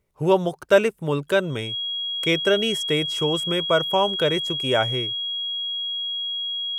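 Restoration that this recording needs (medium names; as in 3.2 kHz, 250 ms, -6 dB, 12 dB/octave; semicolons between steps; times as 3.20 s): band-stop 3.3 kHz, Q 30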